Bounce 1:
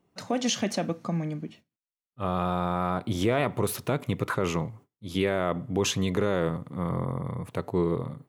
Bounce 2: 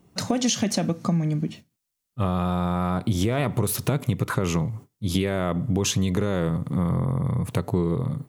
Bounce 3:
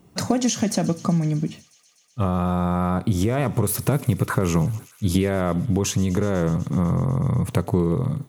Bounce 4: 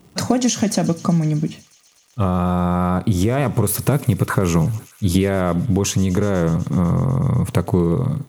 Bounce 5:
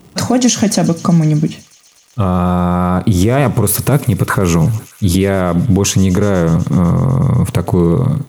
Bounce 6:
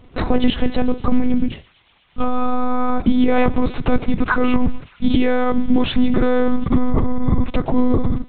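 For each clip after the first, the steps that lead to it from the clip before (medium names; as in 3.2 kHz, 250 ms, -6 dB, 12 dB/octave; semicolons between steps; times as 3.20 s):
tone controls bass +8 dB, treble +7 dB; compression 4:1, threshold -29 dBFS, peak gain reduction 11.5 dB; trim +8 dB
dynamic bell 3.5 kHz, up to -7 dB, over -46 dBFS, Q 1.2; feedback echo behind a high-pass 124 ms, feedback 82%, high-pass 2.7 kHz, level -18 dB; gain riding within 4 dB 0.5 s; trim +3 dB
crackle 160 per s -45 dBFS; trim +3.5 dB
peak limiter -9 dBFS, peak gain reduction 7.5 dB; trim +7 dB
monotone LPC vocoder at 8 kHz 250 Hz; trim -2 dB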